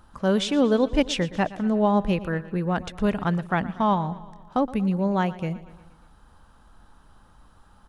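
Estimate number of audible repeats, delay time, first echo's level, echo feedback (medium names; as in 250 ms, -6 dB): 4, 118 ms, -17.5 dB, 59%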